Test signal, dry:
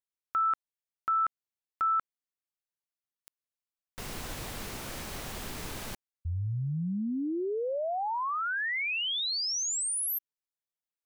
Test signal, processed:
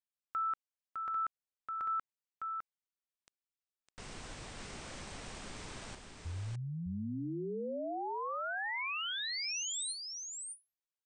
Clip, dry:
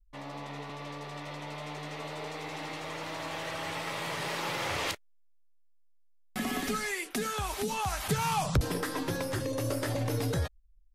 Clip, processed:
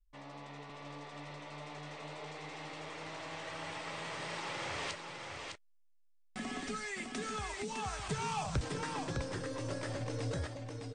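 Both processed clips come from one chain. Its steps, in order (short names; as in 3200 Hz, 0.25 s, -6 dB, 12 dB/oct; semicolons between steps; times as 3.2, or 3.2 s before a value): Chebyshev low-pass 9100 Hz, order 8; on a send: echo 0.607 s -5 dB; on the sum: gain -7 dB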